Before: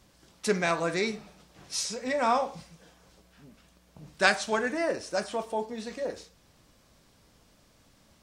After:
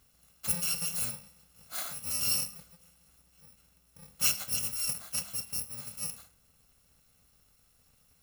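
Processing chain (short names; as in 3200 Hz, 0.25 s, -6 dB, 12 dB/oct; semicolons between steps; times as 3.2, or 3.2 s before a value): FFT order left unsorted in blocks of 128 samples; de-hum 101.7 Hz, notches 34; gain -4.5 dB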